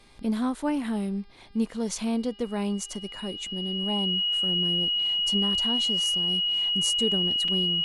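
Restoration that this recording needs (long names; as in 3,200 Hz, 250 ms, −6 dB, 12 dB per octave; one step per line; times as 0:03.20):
hum removal 402.1 Hz, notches 13
notch filter 2,900 Hz, Q 30
repair the gap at 0:07.48, 4 ms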